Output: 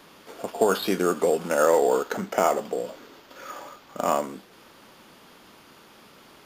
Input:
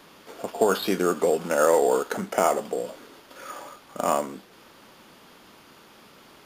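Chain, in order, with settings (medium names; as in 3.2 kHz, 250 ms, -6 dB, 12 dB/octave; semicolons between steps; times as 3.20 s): 1.62–4.24 s: peaking EQ 9.9 kHz -13 dB 0.28 oct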